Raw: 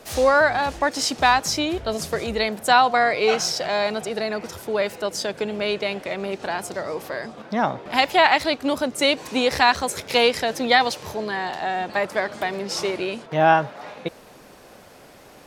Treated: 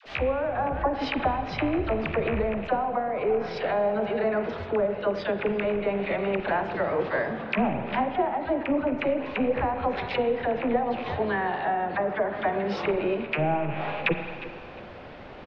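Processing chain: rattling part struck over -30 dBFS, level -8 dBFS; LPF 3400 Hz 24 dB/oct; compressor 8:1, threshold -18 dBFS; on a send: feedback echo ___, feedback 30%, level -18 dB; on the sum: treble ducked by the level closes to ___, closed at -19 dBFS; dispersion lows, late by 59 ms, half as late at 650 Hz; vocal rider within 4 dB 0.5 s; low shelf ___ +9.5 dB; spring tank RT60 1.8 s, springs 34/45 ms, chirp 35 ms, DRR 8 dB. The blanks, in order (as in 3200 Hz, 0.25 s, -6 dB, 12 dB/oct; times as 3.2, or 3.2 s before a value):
0.355 s, 710 Hz, 63 Hz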